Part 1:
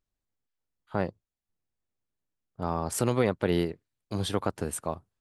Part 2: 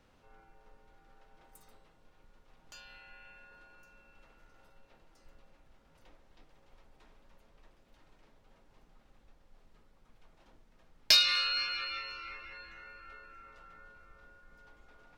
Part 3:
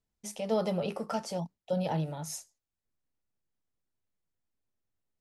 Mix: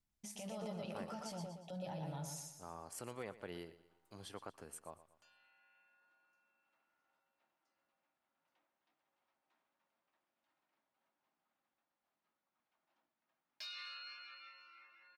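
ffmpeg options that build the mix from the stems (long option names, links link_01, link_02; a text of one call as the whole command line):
ffmpeg -i stem1.wav -i stem2.wav -i stem3.wav -filter_complex "[0:a]lowshelf=frequency=450:gain=-10,bandreject=frequency=3700:width=8.6,volume=-16.5dB,asplit=2[link_01][link_02];[link_02]volume=-16dB[link_03];[1:a]highpass=370,highshelf=frequency=4000:gain=-9,adelay=2500,volume=-15dB[link_04];[2:a]acompressor=threshold=-36dB:ratio=2.5,volume=-2.5dB,asplit=2[link_05][link_06];[link_06]volume=-10dB[link_07];[link_04][link_05]amix=inputs=2:normalize=0,equalizer=frequency=460:width_type=o:width=0.44:gain=-14,alimiter=level_in=16dB:limit=-24dB:level=0:latency=1:release=19,volume=-16dB,volume=0dB[link_08];[link_03][link_07]amix=inputs=2:normalize=0,aecho=0:1:118|236|354|472|590|708:1|0.42|0.176|0.0741|0.0311|0.0131[link_09];[link_01][link_08][link_09]amix=inputs=3:normalize=0" out.wav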